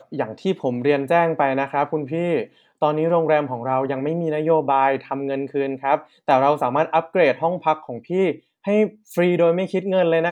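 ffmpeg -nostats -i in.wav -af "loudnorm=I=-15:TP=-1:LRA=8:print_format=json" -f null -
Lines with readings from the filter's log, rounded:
"input_i" : "-20.9",
"input_tp" : "-3.0",
"input_lra" : "0.6",
"input_thresh" : "-30.9",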